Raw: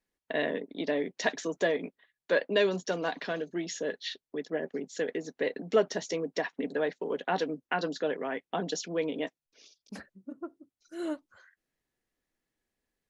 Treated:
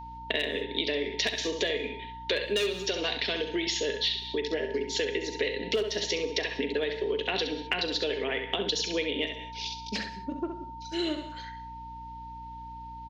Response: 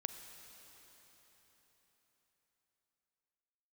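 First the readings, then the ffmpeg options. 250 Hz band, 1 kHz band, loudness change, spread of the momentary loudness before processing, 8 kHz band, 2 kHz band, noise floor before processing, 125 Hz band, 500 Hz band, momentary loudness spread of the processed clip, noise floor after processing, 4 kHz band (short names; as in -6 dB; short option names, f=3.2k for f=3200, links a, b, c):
+0.5 dB, 0.0 dB, +2.0 dB, 14 LU, n/a, +2.5 dB, under -85 dBFS, +2.0 dB, 0.0 dB, 13 LU, -42 dBFS, +12.0 dB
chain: -filter_complex "[0:a]aexciter=amount=5.1:drive=7.1:freq=2.1k,asoftclip=type=tanh:threshold=-8dB,highpass=f=210:w=0.5412,highpass=f=210:w=1.3066,equalizer=f=210:t=q:w=4:g=5,equalizer=f=410:t=q:w=4:g=9,equalizer=f=850:t=q:w=4:g=-4,lowpass=f=4.1k:w=0.5412,lowpass=f=4.1k:w=1.3066,aecho=1:1:39|66:0.168|0.376,asoftclip=type=hard:threshold=-12dB,aeval=exprs='val(0)+0.00501*sin(2*PI*910*n/s)':c=same,asplit=2[a][b];[1:a]atrim=start_sample=2205,afade=t=out:st=0.25:d=0.01,atrim=end_sample=11466,highshelf=f=3.7k:g=8[c];[b][c]afir=irnorm=-1:irlink=0,volume=5dB[d];[a][d]amix=inputs=2:normalize=0,acompressor=threshold=-25dB:ratio=6,aeval=exprs='val(0)+0.00631*(sin(2*PI*60*n/s)+sin(2*PI*2*60*n/s)/2+sin(2*PI*3*60*n/s)/3+sin(2*PI*4*60*n/s)/4+sin(2*PI*5*60*n/s)/5)':c=same,volume=-2dB"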